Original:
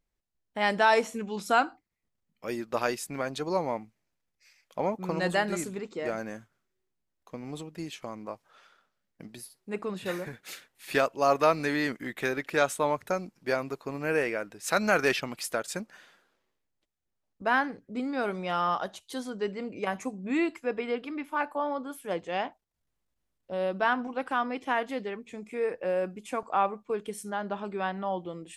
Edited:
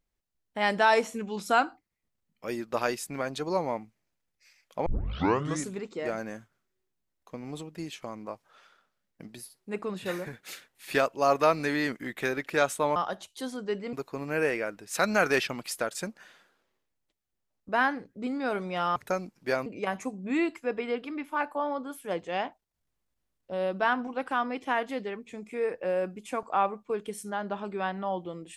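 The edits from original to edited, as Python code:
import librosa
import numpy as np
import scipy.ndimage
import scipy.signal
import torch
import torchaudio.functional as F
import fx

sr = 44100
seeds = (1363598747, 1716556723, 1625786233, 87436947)

y = fx.edit(x, sr, fx.tape_start(start_s=4.86, length_s=0.81),
    fx.swap(start_s=12.96, length_s=0.7, other_s=18.69, other_length_s=0.97), tone=tone)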